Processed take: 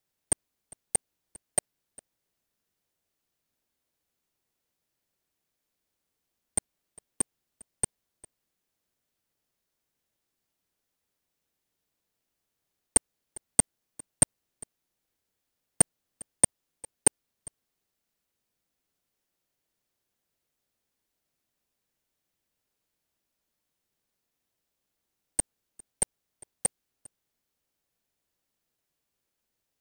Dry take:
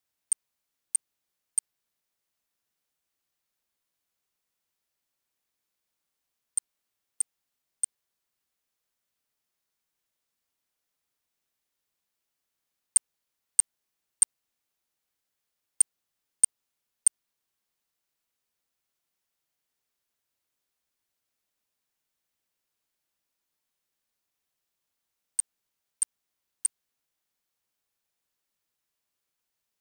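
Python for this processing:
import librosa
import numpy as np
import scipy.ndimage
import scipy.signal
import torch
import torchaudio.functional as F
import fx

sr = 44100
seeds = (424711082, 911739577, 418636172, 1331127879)

p1 = x + 10.0 ** (-23.5 / 20.0) * np.pad(x, (int(403 * sr / 1000.0), 0))[:len(x)]
p2 = fx.sample_hold(p1, sr, seeds[0], rate_hz=1300.0, jitter_pct=20)
y = p1 + F.gain(torch.from_numpy(p2), -9.0).numpy()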